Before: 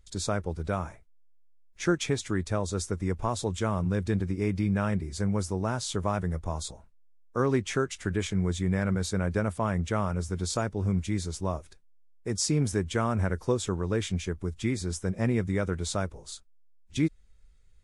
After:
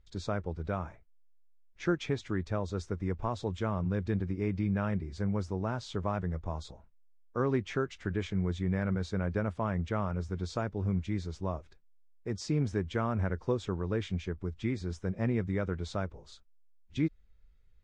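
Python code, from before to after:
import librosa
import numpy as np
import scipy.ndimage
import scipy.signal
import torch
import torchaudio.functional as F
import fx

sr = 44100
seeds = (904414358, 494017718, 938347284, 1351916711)

y = fx.air_absorb(x, sr, metres=170.0)
y = y * 10.0 ** (-3.5 / 20.0)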